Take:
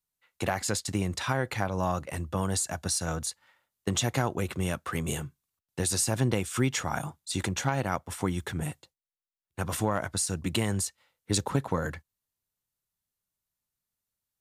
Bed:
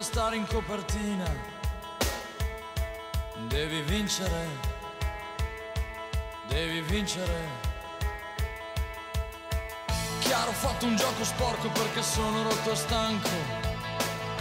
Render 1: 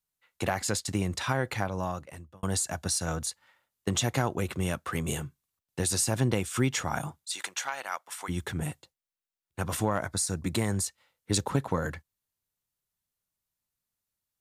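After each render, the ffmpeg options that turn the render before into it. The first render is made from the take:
ffmpeg -i in.wav -filter_complex "[0:a]asplit=3[link_01][link_02][link_03];[link_01]afade=type=out:start_time=7.24:duration=0.02[link_04];[link_02]highpass=1000,afade=type=in:start_time=7.24:duration=0.02,afade=type=out:start_time=8.28:duration=0.02[link_05];[link_03]afade=type=in:start_time=8.28:duration=0.02[link_06];[link_04][link_05][link_06]amix=inputs=3:normalize=0,asettb=1/sr,asplit=3[link_07][link_08][link_09];[link_07]atrim=end=10.024[link_10];[link_08]atrim=start=10.02:end=10.84,asetpts=PTS-STARTPTS,afade=type=in:duration=0.004:curve=qsin,afade=type=out:start_time=0.816:duration=0.004:curve=qsin,equalizer=frequency=2900:width=6.3:gain=-11.5[link_11];[link_09]atrim=start=10.836[link_12];[link_10][link_11]acrossfade=duration=0.004:curve1=hsin:curve2=qsin[link_13];[link_13][link_12]acrossfade=duration=0.004:curve1=qsin:curve2=hsin,asplit=2[link_14][link_15];[link_14]atrim=end=2.43,asetpts=PTS-STARTPTS,afade=type=out:start_time=1.54:duration=0.89[link_16];[link_15]atrim=start=2.43,asetpts=PTS-STARTPTS,afade=type=in:duration=0.004:curve=hsin[link_17];[link_16][link_17]concat=n=2:v=0:a=1" out.wav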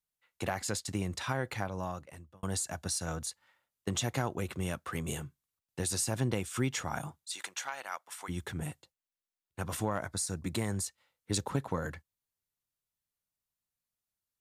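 ffmpeg -i in.wav -af "volume=-5dB" out.wav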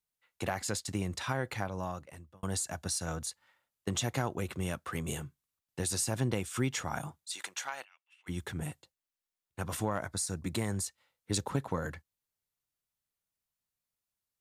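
ffmpeg -i in.wav -filter_complex "[0:a]asplit=3[link_01][link_02][link_03];[link_01]afade=type=out:start_time=7.83:duration=0.02[link_04];[link_02]bandpass=frequency=2700:width_type=q:width=15,afade=type=in:start_time=7.83:duration=0.02,afade=type=out:start_time=8.26:duration=0.02[link_05];[link_03]afade=type=in:start_time=8.26:duration=0.02[link_06];[link_04][link_05][link_06]amix=inputs=3:normalize=0" out.wav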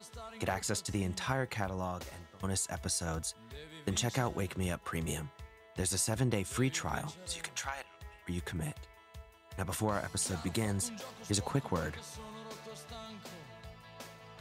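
ffmpeg -i in.wav -i bed.wav -filter_complex "[1:a]volume=-19dB[link_01];[0:a][link_01]amix=inputs=2:normalize=0" out.wav

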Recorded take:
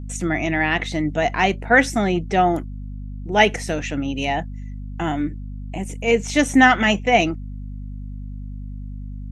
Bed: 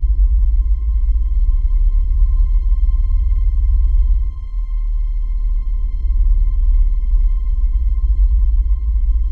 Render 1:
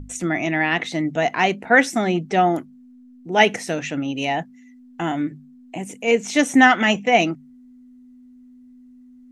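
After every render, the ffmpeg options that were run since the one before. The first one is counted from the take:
ffmpeg -i in.wav -af "bandreject=frequency=50:width_type=h:width=6,bandreject=frequency=100:width_type=h:width=6,bandreject=frequency=150:width_type=h:width=6,bandreject=frequency=200:width_type=h:width=6" out.wav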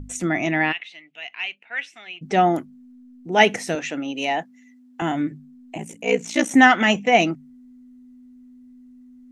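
ffmpeg -i in.wav -filter_complex "[0:a]asplit=3[link_01][link_02][link_03];[link_01]afade=type=out:start_time=0.71:duration=0.02[link_04];[link_02]bandpass=frequency=2700:width_type=q:width=4.9,afade=type=in:start_time=0.71:duration=0.02,afade=type=out:start_time=2.21:duration=0.02[link_05];[link_03]afade=type=in:start_time=2.21:duration=0.02[link_06];[link_04][link_05][link_06]amix=inputs=3:normalize=0,asettb=1/sr,asplit=3[link_07][link_08][link_09];[link_07]atrim=end=3.754[link_10];[link_08]atrim=start=3.75:end=5.02,asetpts=PTS-STARTPTS,afade=type=in:duration=0.004:curve=qsin,afade=type=out:start_time=1.266:duration=0.004:curve=qsin,highpass=280[link_11];[link_09]atrim=start=5.016[link_12];[link_10][link_11]acrossfade=duration=0.004:curve1=hsin:curve2=qsin[link_13];[link_13][link_12]acrossfade=duration=0.004:curve1=qsin:curve2=hsin,asettb=1/sr,asplit=3[link_14][link_15][link_16];[link_14]atrim=end=5.774[link_17];[link_15]atrim=start=5.77:end=6.51,asetpts=PTS-STARTPTS,afade=type=in:duration=0.004:curve=qsin,afade=type=out:start_time=0.736:duration=0.004:curve=qsin,aeval=exprs='val(0)*sin(2*PI*30*n/s)':channel_layout=same[link_18];[link_16]atrim=start=6.506[link_19];[link_17][link_18]acrossfade=duration=0.004:curve1=hsin:curve2=qsin[link_20];[link_20][link_19]acrossfade=duration=0.004:curve1=qsin:curve2=hsin" out.wav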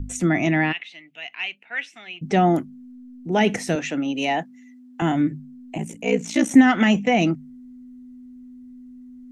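ffmpeg -i in.wav -filter_complex "[0:a]acrossover=split=280[link_01][link_02];[link_01]acontrast=67[link_03];[link_02]alimiter=limit=-12.5dB:level=0:latency=1:release=57[link_04];[link_03][link_04]amix=inputs=2:normalize=0" out.wav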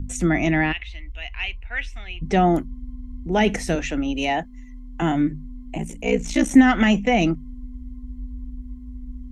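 ffmpeg -i in.wav -i bed.wav -filter_complex "[1:a]volume=-20.5dB[link_01];[0:a][link_01]amix=inputs=2:normalize=0" out.wav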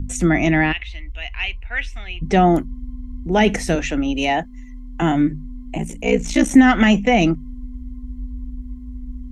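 ffmpeg -i in.wav -af "volume=3.5dB,alimiter=limit=-2dB:level=0:latency=1" out.wav

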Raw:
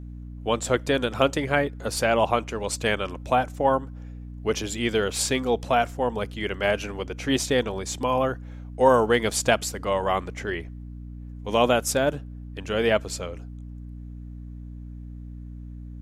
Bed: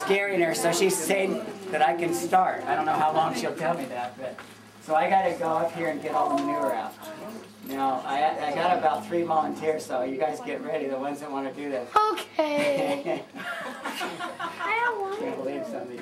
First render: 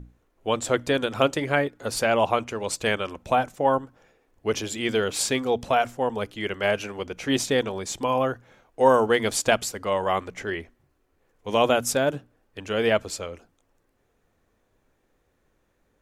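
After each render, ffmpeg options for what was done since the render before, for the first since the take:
ffmpeg -i in.wav -af "bandreject=frequency=60:width_type=h:width=6,bandreject=frequency=120:width_type=h:width=6,bandreject=frequency=180:width_type=h:width=6,bandreject=frequency=240:width_type=h:width=6,bandreject=frequency=300:width_type=h:width=6" out.wav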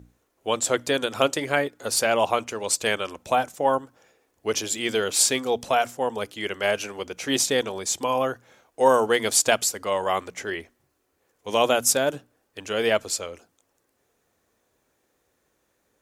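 ffmpeg -i in.wav -af "highpass=56,bass=frequency=250:gain=-6,treble=frequency=4000:gain=8" out.wav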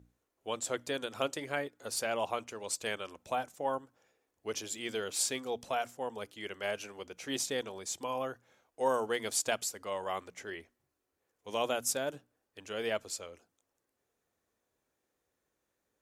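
ffmpeg -i in.wav -af "volume=-12dB" out.wav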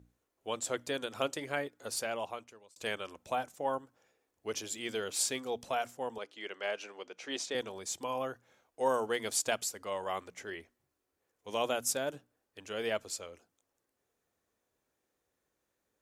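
ffmpeg -i in.wav -filter_complex "[0:a]asettb=1/sr,asplit=3[link_01][link_02][link_03];[link_01]atrim=end=6.184[link_04];[link_02]atrim=start=6.18:end=7.55,asetpts=PTS-STARTPTS,afade=type=in:duration=0.004:curve=qsin,afade=type=out:start_time=1.366:duration=0.004:curve=qsin,highpass=320,lowpass=5600[link_05];[link_03]atrim=start=7.546[link_06];[link_04][link_05]acrossfade=duration=0.004:curve1=hsin:curve2=qsin[link_07];[link_07][link_06]acrossfade=duration=0.004:curve1=qsin:curve2=hsin,asplit=2[link_08][link_09];[link_08]atrim=end=2.76,asetpts=PTS-STARTPTS,afade=type=out:start_time=1.87:duration=0.89[link_10];[link_09]atrim=start=2.76,asetpts=PTS-STARTPTS,afade=type=in:duration=0.004:curve=hsin[link_11];[link_10][link_11]concat=n=2:v=0:a=1" out.wav

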